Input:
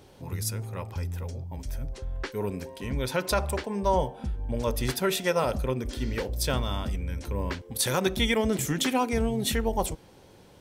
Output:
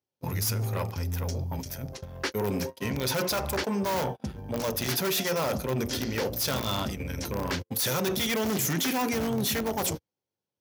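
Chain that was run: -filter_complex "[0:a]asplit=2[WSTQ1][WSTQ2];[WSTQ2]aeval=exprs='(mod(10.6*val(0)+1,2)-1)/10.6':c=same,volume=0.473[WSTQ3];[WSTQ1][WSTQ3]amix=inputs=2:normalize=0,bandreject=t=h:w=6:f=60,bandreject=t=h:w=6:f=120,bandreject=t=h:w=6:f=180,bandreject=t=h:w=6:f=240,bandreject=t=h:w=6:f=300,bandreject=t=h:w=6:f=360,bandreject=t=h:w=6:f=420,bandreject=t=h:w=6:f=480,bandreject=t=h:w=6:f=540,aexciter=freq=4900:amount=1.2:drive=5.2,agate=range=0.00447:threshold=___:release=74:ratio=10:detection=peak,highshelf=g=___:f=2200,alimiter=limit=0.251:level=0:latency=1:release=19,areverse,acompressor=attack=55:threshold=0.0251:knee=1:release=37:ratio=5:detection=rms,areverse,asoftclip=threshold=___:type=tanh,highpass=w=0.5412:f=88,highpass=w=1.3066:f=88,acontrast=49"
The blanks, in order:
0.0141, 2.5, 0.0376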